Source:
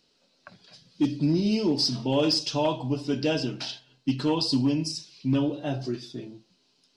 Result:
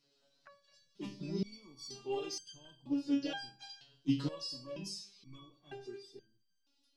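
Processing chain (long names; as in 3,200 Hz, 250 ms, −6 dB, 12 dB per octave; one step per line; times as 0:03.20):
pitch-shifted copies added +3 semitones −12 dB
step-sequenced resonator 2.1 Hz 140–1,600 Hz
level +2.5 dB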